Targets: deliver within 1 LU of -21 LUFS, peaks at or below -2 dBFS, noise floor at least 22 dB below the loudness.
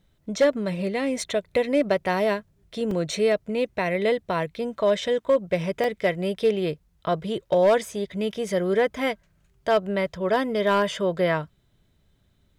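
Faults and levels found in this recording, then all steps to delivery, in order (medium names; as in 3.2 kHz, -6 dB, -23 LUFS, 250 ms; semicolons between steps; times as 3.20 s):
clipped samples 0.4%; clipping level -13.0 dBFS; dropouts 2; longest dropout 2.9 ms; loudness -24.5 LUFS; peak level -13.0 dBFS; loudness target -21.0 LUFS
-> clip repair -13 dBFS; interpolate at 2.91/5.84 s, 2.9 ms; trim +3.5 dB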